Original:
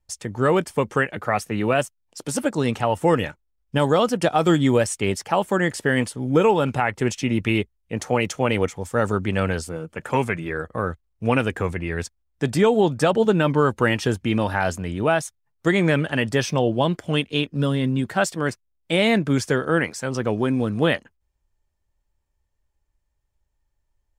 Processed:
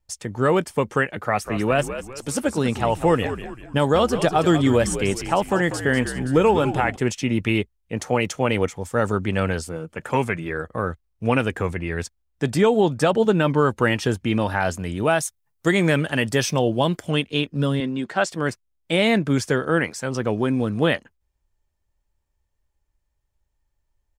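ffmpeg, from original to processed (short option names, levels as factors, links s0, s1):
-filter_complex "[0:a]asplit=3[s0][s1][s2];[s0]afade=t=out:st=1.44:d=0.02[s3];[s1]asplit=5[s4][s5][s6][s7][s8];[s5]adelay=195,afreqshift=-67,volume=0.299[s9];[s6]adelay=390,afreqshift=-134,volume=0.126[s10];[s7]adelay=585,afreqshift=-201,volume=0.0525[s11];[s8]adelay=780,afreqshift=-268,volume=0.0221[s12];[s4][s9][s10][s11][s12]amix=inputs=5:normalize=0,afade=t=in:st=1.44:d=0.02,afade=t=out:st=6.95:d=0.02[s13];[s2]afade=t=in:st=6.95:d=0.02[s14];[s3][s13][s14]amix=inputs=3:normalize=0,asettb=1/sr,asplit=3[s15][s16][s17];[s15]atrim=end=14.794[s18];[s16]atrim=start=14.79:end=17.11,asetpts=PTS-STARTPTS,afade=t=in:d=0.004:c=qsin,afade=t=out:st=2.316:d=0.004:c=qsin,highshelf=f=6400:g=9.5[s19];[s17]atrim=start=17.106[s20];[s18][s19]acrossfade=d=0.004:c1=hsin:c2=qsin[s21];[s21][s20]acrossfade=d=0.004:c1=qsin:c2=hsin,asettb=1/sr,asplit=3[s22][s23][s24];[s22]atrim=end=17.804[s25];[s23]atrim=start=17.8:end=18.31,asetpts=PTS-STARTPTS,afade=t=in:d=0.004:c=qsin,afade=t=out:st=0.506:d=0.004:c=qsin,highpass=240,lowpass=6800[s26];[s24]atrim=start=18.306[s27];[s25][s26]acrossfade=d=0.004:c1=hsin:c2=qsin[s28];[s28][s27]acrossfade=d=0.004:c1=qsin:c2=hsin"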